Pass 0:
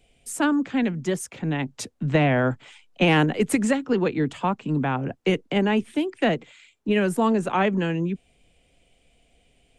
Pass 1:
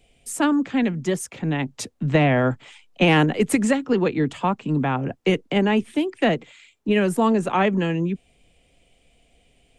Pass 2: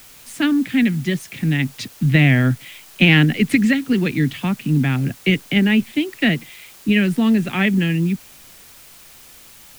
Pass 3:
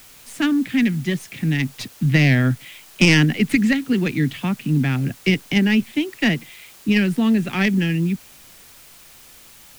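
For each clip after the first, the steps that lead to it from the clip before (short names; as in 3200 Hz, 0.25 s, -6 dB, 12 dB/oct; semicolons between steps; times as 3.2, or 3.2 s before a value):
notch 1500 Hz, Q 23; gain +2 dB
graphic EQ 125/250/500/1000/2000/4000/8000 Hz +7/+5/-8/-12/+9/+7/-10 dB; in parallel at -5.5 dB: requantised 6-bit, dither triangular; on the sum: gain -3 dB
tracing distortion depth 0.077 ms; gain -1.5 dB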